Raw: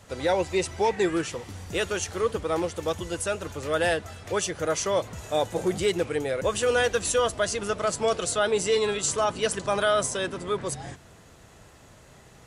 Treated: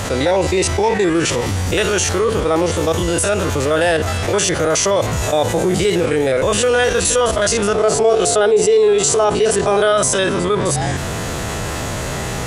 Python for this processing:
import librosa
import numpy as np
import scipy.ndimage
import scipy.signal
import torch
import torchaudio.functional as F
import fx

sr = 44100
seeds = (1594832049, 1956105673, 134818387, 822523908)

y = fx.spec_steps(x, sr, hold_ms=50)
y = fx.small_body(y, sr, hz=(420.0, 710.0), ring_ms=45, db=fx.line((7.74, 14.0), (9.91, 10.0)), at=(7.74, 9.91), fade=0.02)
y = fx.env_flatten(y, sr, amount_pct=70)